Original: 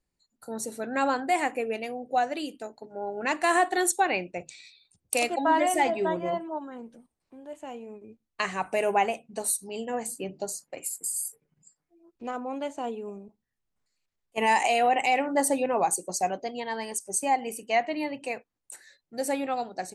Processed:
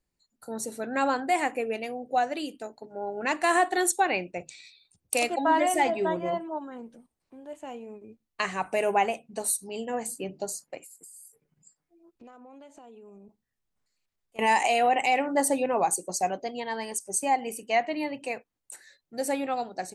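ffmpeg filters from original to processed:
-filter_complex "[0:a]asettb=1/sr,asplit=3[s0][s1][s2];[s0]atrim=end=10.774[s3];[s1]atrim=start=10.77:end=14.39,asetpts=PTS-STARTPTS,afade=t=in:d=0.004:c=qsin,afade=t=out:st=3.616:d=0.004:c=qsin,acompressor=threshold=0.00447:ratio=6:attack=3.2:release=140:knee=1:detection=peak[s4];[s2]atrim=start=14.386[s5];[s3][s4]acrossfade=d=0.004:c1=hsin:c2=qsin[s6];[s6][s5]acrossfade=d=0.004:c1=qsin:c2=hsin"

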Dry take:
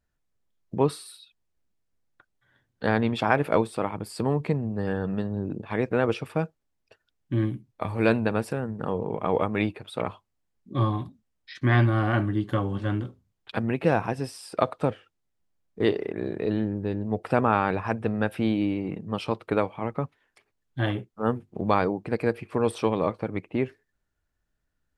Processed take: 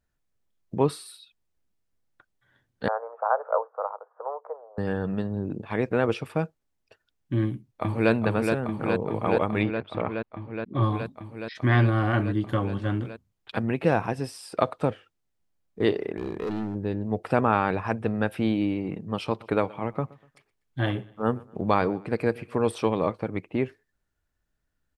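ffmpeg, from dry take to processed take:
-filter_complex "[0:a]asettb=1/sr,asplit=3[s0][s1][s2];[s0]atrim=end=2.884[s3];[s1]atrim=start=2.88:end=4.78,asetpts=PTS-STARTPTS,afade=t=in:d=0.004:c=qsin,afade=t=out:st=1.896:d=0.004:c=qsin,asuperpass=centerf=830:order=12:qfactor=0.9[s4];[s2]atrim=start=4.776[s5];[s3][s4]acrossfade=d=0.004:c1=hsin:c2=qsin[s6];[s6][s5]acrossfade=d=0.004:c1=qsin:c2=hsin,asplit=2[s7][s8];[s8]afade=t=in:st=7.42:d=0.01,afade=t=out:st=8.12:d=0.01,aecho=0:1:420|840|1260|1680|2100|2520|2940|3360|3780|4200|4620|5040:0.595662|0.506313|0.430366|0.365811|0.310939|0.264298|0.224654|0.190956|0.162312|0.137965|0.117271|0.09968[s9];[s7][s9]amix=inputs=2:normalize=0,asettb=1/sr,asplit=3[s10][s11][s12];[s10]atrim=end=9.634[s13];[s11]atrim=start=9.63:end=10.83,asetpts=PTS-STARTPTS,afade=t=in:d=0.004:c=qsin,afade=t=out:st=1.196:d=0.004:c=qsin,lowpass=3100[s14];[s12]atrim=start=10.826[s15];[s13][s14]acrossfade=d=0.004:c1=hsin:c2=qsin[s16];[s16][s15]acrossfade=d=0.004:c1=qsin:c2=hsin,asplit=3[s17][s18][s19];[s17]afade=t=out:st=16.16:d=0.02[s20];[s18]volume=20,asoftclip=hard,volume=0.0501,afade=t=in:st=16.16:d=0.02,afade=t=out:st=16.74:d=0.02[s21];[s19]afade=t=in:st=16.74:d=0.02[s22];[s20][s21][s22]amix=inputs=3:normalize=0,asplit=3[s23][s24][s25];[s23]afade=t=out:st=19.38:d=0.02[s26];[s24]aecho=1:1:122|244|366:0.075|0.0285|0.0108,afade=t=in:st=19.38:d=0.02,afade=t=out:st=22.55:d=0.02[s27];[s25]afade=t=in:st=22.55:d=0.02[s28];[s26][s27][s28]amix=inputs=3:normalize=0"

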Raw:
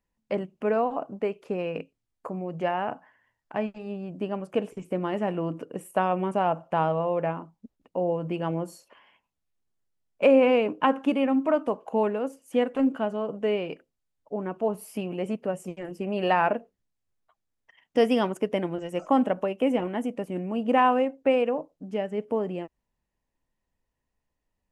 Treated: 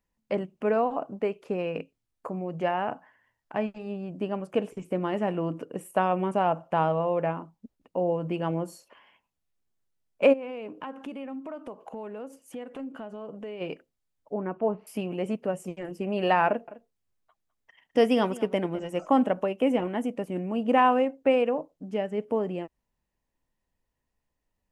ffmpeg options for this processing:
-filter_complex "[0:a]asplit=3[s0][s1][s2];[s0]afade=t=out:st=10.32:d=0.02[s3];[s1]acompressor=threshold=0.0141:ratio=4:attack=3.2:release=140:knee=1:detection=peak,afade=t=in:st=10.32:d=0.02,afade=t=out:st=13.6:d=0.02[s4];[s2]afade=t=in:st=13.6:d=0.02[s5];[s3][s4][s5]amix=inputs=3:normalize=0,asettb=1/sr,asplit=3[s6][s7][s8];[s6]atrim=end=14.344[s9];[s7]atrim=start=14.34:end=14.87,asetpts=PTS-STARTPTS,afade=t=in:d=0.004:c=qsin,afade=t=out:st=0.526:d=0.004:c=qsin,lowpass=f=2500:w=0.5412,lowpass=f=2500:w=1.3066[s10];[s8]atrim=start=14.866[s11];[s9][s10]acrossfade=d=0.004:c1=hsin:c2=qsin[s12];[s12][s11]acrossfade=d=0.004:c1=qsin:c2=hsin,asettb=1/sr,asplit=3[s13][s14][s15];[s13]atrim=end=16.474[s16];[s14]atrim=start=16.47:end=18.97,asetpts=PTS-STARTPTS,afade=t=in:d=0.004:c=qsin,afade=t=out:st=2.496:d=0.004:c=qsin,aecho=1:1:206:0.133,atrim=end_sample=110250[s17];[s15]atrim=start=18.966[s18];[s16][s17]acrossfade=d=0.004:c1=hsin:c2=qsin[s19];[s19][s18]acrossfade=d=0.004:c1=qsin:c2=hsin"

